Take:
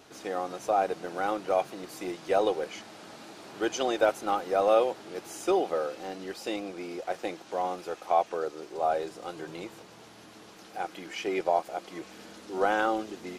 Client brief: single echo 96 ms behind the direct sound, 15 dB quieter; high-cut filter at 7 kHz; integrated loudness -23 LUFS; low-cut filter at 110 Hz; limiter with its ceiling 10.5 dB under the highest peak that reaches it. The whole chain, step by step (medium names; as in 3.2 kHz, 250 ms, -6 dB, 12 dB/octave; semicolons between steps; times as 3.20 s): high-pass 110 Hz; low-pass 7 kHz; peak limiter -21 dBFS; delay 96 ms -15 dB; trim +11 dB